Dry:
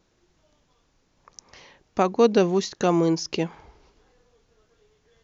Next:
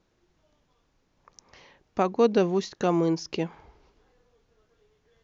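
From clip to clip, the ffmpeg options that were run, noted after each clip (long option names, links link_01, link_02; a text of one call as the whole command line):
ffmpeg -i in.wav -af "highshelf=frequency=6500:gain=-10,volume=-3dB" out.wav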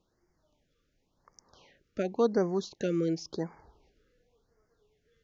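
ffmpeg -i in.wav -af "afftfilt=real='re*(1-between(b*sr/1024,820*pow(3300/820,0.5+0.5*sin(2*PI*0.92*pts/sr))/1.41,820*pow(3300/820,0.5+0.5*sin(2*PI*0.92*pts/sr))*1.41))':imag='im*(1-between(b*sr/1024,820*pow(3300/820,0.5+0.5*sin(2*PI*0.92*pts/sr))/1.41,820*pow(3300/820,0.5+0.5*sin(2*PI*0.92*pts/sr))*1.41))':win_size=1024:overlap=0.75,volume=-5dB" out.wav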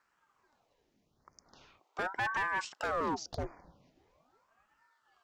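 ffmpeg -i in.wav -af "volume=30dB,asoftclip=hard,volume=-30dB,aeval=exprs='val(0)*sin(2*PI*740*n/s+740*0.85/0.41*sin(2*PI*0.41*n/s))':channel_layout=same,volume=2.5dB" out.wav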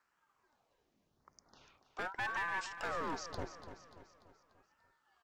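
ffmpeg -i in.wav -filter_complex "[0:a]acrossover=split=1300[link_01][link_02];[link_01]aeval=exprs='clip(val(0),-1,0.0075)':channel_layout=same[link_03];[link_03][link_02]amix=inputs=2:normalize=0,aecho=1:1:292|584|876|1168|1460:0.282|0.135|0.0649|0.0312|0.015,volume=-3.5dB" out.wav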